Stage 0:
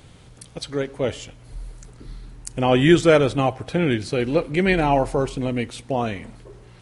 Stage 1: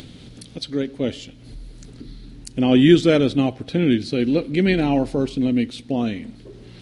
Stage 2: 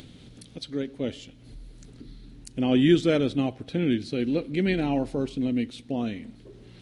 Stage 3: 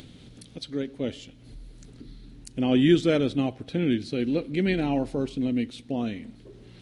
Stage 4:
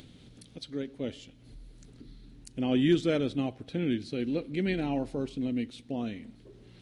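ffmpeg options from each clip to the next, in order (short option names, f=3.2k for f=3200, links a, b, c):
-af "equalizer=f=250:t=o:w=1:g=12,equalizer=f=1k:t=o:w=1:g=-7,equalizer=f=4k:t=o:w=1:g=9,equalizer=f=8k:t=o:w=1:g=-4,acompressor=mode=upward:threshold=-29dB:ratio=2.5,volume=-4dB"
-af "equalizer=f=4.7k:t=o:w=0.37:g=-2.5,volume=-6.5dB"
-af anull
-af "asoftclip=type=hard:threshold=-9.5dB,volume=-5dB"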